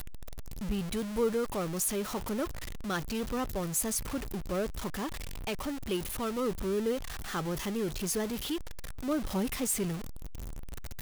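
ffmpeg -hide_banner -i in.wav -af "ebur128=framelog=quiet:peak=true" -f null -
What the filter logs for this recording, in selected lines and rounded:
Integrated loudness:
  I:         -33.4 LUFS
  Threshold: -43.8 LUFS
Loudness range:
  LRA:         1.7 LU
  Threshold: -53.7 LUFS
  LRA low:   -34.4 LUFS
  LRA high:  -32.7 LUFS
True peak:
  Peak:      -18.2 dBFS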